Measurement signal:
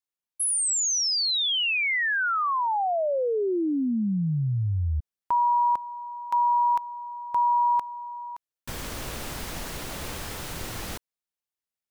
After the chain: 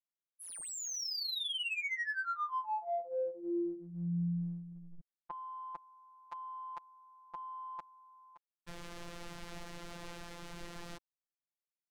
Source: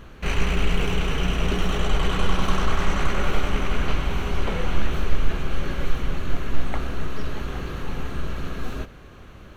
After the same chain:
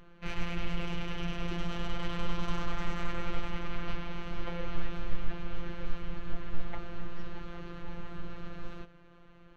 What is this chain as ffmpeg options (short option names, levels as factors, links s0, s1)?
-af "afftfilt=real='hypot(re,im)*cos(PI*b)':imag='0':win_size=1024:overlap=0.75,adynamicsmooth=sensitivity=3.5:basefreq=4100,volume=0.422"